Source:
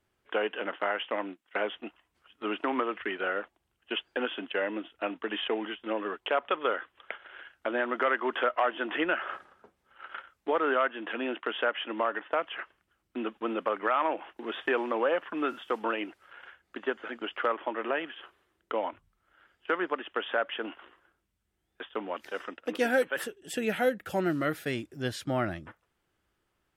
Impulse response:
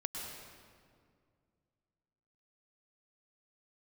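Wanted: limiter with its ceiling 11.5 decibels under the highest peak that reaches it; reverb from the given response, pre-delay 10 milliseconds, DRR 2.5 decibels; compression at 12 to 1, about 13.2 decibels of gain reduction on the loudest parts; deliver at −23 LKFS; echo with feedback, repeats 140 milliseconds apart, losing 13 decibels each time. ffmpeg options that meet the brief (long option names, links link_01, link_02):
-filter_complex "[0:a]acompressor=threshold=-35dB:ratio=12,alimiter=level_in=7.5dB:limit=-24dB:level=0:latency=1,volume=-7.5dB,aecho=1:1:140|280|420:0.224|0.0493|0.0108,asplit=2[link_01][link_02];[1:a]atrim=start_sample=2205,adelay=10[link_03];[link_02][link_03]afir=irnorm=-1:irlink=0,volume=-3.5dB[link_04];[link_01][link_04]amix=inputs=2:normalize=0,volume=18.5dB"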